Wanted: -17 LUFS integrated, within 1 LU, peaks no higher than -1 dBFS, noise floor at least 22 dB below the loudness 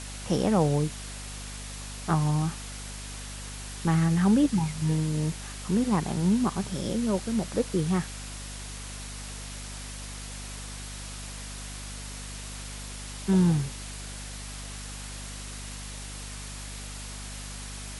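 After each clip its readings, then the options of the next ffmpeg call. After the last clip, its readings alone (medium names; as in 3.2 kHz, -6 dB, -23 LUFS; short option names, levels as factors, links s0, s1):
hum 50 Hz; highest harmonic 250 Hz; hum level -38 dBFS; noise floor -39 dBFS; noise floor target -52 dBFS; loudness -30.0 LUFS; peak level -11.0 dBFS; loudness target -17.0 LUFS
-> -af "bandreject=f=50:t=h:w=6,bandreject=f=100:t=h:w=6,bandreject=f=150:t=h:w=6,bandreject=f=200:t=h:w=6,bandreject=f=250:t=h:w=6"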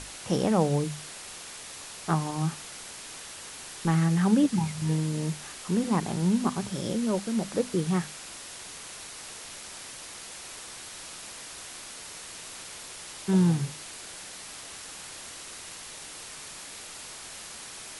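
hum not found; noise floor -43 dBFS; noise floor target -53 dBFS
-> -af "afftdn=nr=10:nf=-43"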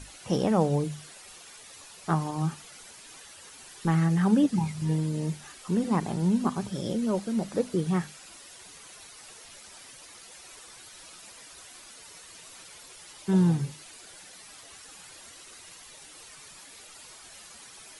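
noise floor -49 dBFS; noise floor target -50 dBFS
-> -af "afftdn=nr=6:nf=-49"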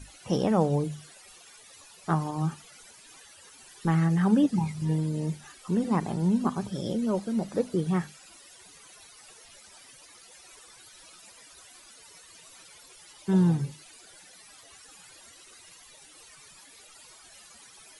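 noise floor -53 dBFS; loudness -27.5 LUFS; peak level -10.5 dBFS; loudness target -17.0 LUFS
-> -af "volume=3.35,alimiter=limit=0.891:level=0:latency=1"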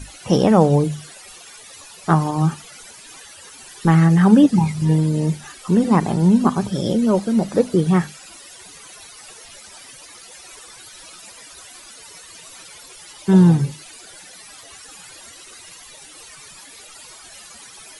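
loudness -17.0 LUFS; peak level -1.0 dBFS; noise floor -42 dBFS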